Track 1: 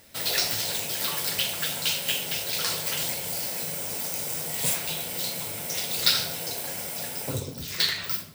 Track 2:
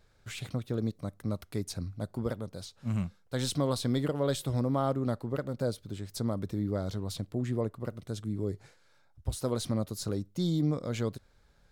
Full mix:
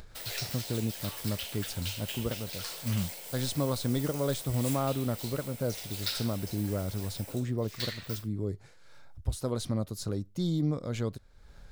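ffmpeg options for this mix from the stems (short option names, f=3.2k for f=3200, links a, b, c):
-filter_complex "[0:a]highpass=310,agate=range=-33dB:threshold=-32dB:ratio=3:detection=peak,volume=-12dB[a];[1:a]volume=-1.5dB[b];[a][b]amix=inputs=2:normalize=0,lowshelf=f=69:g=8.5,acompressor=mode=upward:threshold=-38dB:ratio=2.5"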